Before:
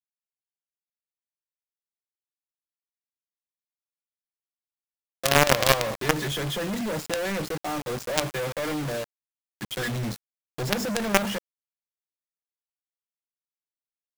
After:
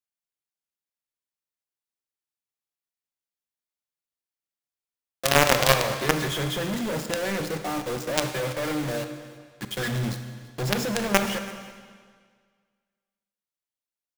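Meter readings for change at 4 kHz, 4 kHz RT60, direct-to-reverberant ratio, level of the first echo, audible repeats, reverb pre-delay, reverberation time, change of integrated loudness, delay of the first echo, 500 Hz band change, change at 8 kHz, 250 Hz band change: +0.5 dB, 1.7 s, 7.5 dB, -21.5 dB, 1, 27 ms, 1.8 s, +1.0 dB, 0.333 s, +0.5 dB, +0.5 dB, +1.0 dB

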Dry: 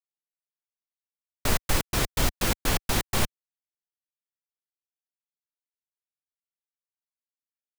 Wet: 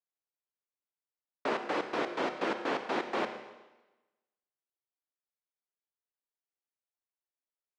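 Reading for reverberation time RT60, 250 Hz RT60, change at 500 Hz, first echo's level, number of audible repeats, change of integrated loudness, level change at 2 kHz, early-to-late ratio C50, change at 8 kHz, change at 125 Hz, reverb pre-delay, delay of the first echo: 1.1 s, 1.1 s, +1.0 dB, none, none, -6.5 dB, -4.5 dB, 9.0 dB, -25.5 dB, -24.0 dB, 29 ms, none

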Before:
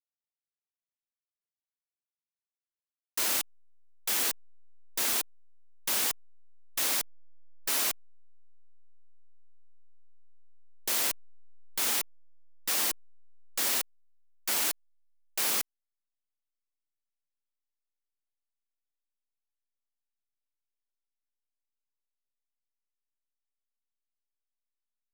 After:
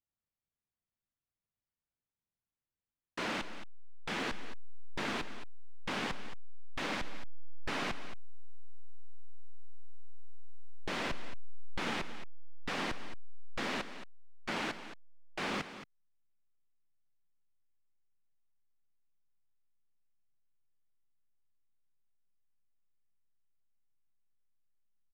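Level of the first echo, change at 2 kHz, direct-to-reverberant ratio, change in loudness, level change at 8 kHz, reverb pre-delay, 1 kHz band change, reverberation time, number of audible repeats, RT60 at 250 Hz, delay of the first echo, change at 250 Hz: -12.5 dB, -1.0 dB, none, -10.5 dB, -21.5 dB, none, +0.5 dB, none, 1, none, 0.223 s, +7.0 dB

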